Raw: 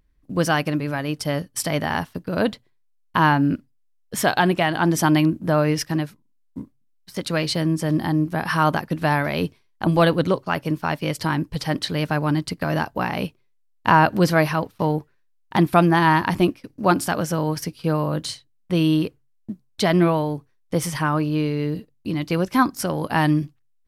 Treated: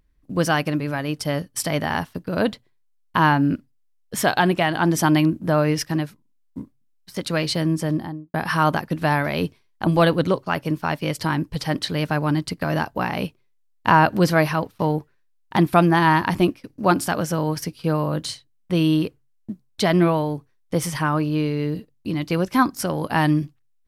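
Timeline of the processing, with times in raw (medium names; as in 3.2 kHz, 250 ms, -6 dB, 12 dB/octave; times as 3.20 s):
7.77–8.34 s: studio fade out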